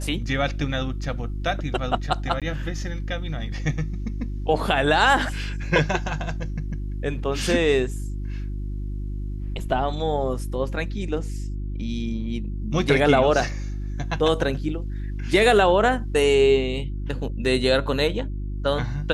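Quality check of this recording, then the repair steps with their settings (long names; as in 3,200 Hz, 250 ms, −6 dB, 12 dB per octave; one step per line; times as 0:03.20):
mains hum 50 Hz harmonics 7 −29 dBFS
0:02.40–0:02.42: drop-out 17 ms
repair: hum removal 50 Hz, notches 7
repair the gap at 0:02.40, 17 ms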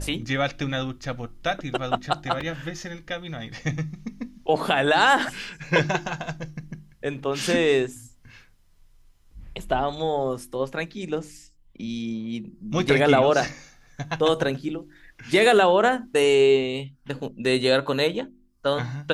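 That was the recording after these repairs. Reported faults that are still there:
none of them is left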